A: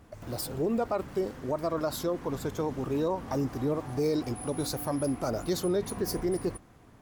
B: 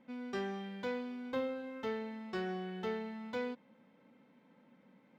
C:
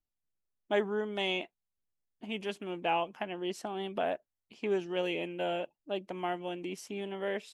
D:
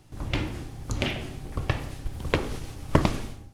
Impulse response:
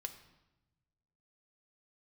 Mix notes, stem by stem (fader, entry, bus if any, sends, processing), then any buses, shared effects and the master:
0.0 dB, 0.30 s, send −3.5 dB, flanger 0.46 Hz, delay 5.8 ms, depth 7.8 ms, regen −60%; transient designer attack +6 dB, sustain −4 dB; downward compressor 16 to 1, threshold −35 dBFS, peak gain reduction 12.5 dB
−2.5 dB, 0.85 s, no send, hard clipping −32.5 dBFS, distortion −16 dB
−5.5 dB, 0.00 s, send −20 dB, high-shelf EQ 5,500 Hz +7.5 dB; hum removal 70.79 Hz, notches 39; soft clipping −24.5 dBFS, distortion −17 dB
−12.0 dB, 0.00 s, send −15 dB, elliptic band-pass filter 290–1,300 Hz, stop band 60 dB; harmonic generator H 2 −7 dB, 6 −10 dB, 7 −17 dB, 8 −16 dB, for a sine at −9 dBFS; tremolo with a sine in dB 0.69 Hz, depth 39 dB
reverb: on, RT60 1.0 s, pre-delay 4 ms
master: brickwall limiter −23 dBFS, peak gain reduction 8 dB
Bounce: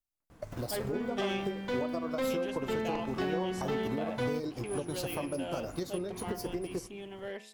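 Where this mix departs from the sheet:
stem B −2.5 dB → +5.5 dB
stem C: send off
stem D −12.0 dB → −21.5 dB

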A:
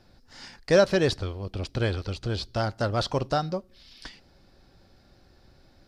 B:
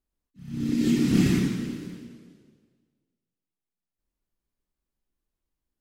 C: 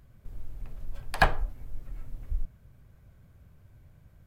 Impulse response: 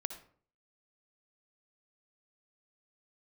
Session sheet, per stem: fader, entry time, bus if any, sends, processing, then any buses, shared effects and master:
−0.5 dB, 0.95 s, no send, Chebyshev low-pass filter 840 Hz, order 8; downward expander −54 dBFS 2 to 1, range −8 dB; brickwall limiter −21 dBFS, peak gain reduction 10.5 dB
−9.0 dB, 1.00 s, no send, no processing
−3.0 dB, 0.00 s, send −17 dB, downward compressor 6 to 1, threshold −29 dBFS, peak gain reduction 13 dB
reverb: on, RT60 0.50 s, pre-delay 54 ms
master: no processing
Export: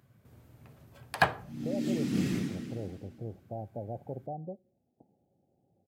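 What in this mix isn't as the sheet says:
stem A −0.5 dB → −9.5 dB
stem C: missing downward compressor 6 to 1, threshold −29 dBFS, peak gain reduction 13 dB
master: extra high-pass filter 100 Hz 24 dB per octave

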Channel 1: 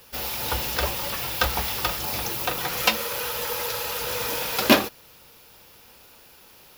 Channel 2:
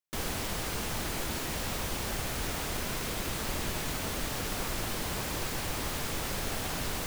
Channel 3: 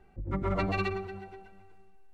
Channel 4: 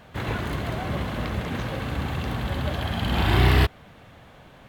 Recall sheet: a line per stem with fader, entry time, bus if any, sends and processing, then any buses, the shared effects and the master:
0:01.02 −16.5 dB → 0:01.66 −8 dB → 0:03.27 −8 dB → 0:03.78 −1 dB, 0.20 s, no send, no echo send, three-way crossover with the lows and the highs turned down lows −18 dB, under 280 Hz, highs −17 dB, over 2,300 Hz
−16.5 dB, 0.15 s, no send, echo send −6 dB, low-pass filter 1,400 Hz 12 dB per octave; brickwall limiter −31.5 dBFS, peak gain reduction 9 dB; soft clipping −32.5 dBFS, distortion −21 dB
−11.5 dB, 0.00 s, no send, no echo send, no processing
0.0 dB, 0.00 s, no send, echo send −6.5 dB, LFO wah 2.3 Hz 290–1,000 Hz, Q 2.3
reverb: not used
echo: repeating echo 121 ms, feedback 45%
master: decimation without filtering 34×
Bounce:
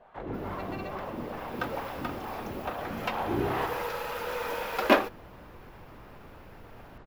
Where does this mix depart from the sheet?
stem 2 −16.5 dB → −9.0 dB
master: missing decimation without filtering 34×

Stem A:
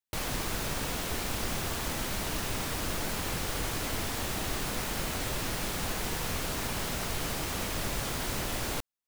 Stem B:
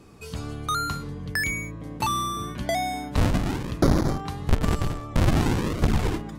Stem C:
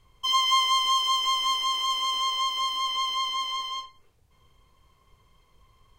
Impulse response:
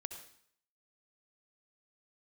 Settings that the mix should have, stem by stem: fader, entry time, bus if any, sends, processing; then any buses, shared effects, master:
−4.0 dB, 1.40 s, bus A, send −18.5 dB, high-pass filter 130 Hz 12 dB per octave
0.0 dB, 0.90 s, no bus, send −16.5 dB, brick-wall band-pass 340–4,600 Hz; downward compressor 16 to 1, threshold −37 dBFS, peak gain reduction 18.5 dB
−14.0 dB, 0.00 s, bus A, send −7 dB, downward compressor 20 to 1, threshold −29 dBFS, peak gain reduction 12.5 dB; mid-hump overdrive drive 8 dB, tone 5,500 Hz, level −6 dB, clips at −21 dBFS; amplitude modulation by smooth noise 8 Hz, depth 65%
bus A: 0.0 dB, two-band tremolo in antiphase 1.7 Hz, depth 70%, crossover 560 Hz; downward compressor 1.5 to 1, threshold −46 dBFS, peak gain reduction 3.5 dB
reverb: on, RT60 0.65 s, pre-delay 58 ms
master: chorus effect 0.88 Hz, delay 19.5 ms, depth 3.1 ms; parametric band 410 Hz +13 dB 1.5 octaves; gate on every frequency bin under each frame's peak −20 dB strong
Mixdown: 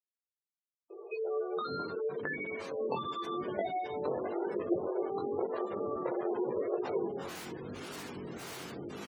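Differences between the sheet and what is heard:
stem B: send −16.5 dB → −22.5 dB
stem C: muted
reverb return +9.5 dB

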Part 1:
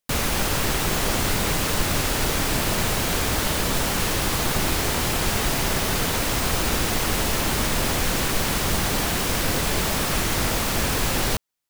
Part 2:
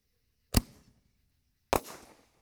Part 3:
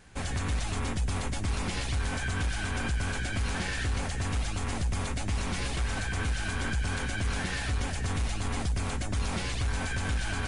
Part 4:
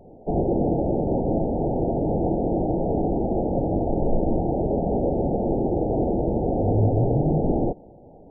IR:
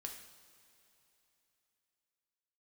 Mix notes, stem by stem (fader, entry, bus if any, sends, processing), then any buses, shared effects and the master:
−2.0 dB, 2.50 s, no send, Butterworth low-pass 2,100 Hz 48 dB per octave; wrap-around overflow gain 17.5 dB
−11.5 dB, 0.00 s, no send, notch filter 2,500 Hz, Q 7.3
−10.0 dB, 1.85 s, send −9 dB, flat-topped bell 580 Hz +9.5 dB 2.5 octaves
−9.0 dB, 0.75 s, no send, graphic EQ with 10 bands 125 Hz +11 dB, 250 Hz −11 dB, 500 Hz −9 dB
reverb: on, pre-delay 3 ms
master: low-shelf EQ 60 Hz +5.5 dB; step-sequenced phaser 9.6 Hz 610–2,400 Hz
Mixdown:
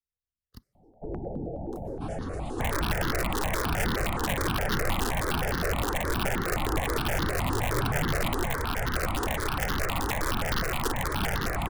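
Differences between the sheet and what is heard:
stem 2 −11.5 dB → −22.0 dB
stem 4: missing graphic EQ with 10 bands 125 Hz +11 dB, 250 Hz −11 dB, 500 Hz −9 dB
master: missing low-shelf EQ 60 Hz +5.5 dB

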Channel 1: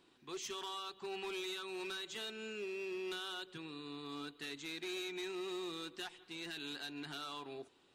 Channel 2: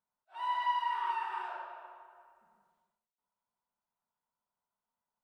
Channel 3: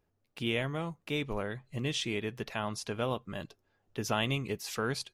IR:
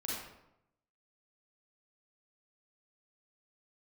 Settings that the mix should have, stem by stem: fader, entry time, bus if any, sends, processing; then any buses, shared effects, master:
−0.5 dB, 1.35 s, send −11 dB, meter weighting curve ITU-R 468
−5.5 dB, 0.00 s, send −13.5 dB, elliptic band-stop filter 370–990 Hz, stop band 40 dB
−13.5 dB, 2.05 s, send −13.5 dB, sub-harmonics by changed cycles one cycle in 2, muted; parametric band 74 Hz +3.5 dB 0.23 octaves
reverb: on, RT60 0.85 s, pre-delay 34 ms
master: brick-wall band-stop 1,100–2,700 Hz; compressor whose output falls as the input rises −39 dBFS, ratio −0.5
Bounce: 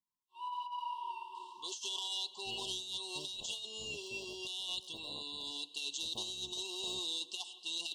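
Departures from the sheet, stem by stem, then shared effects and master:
stem 3 −13.5 dB → −20.0 dB
reverb return −10.0 dB

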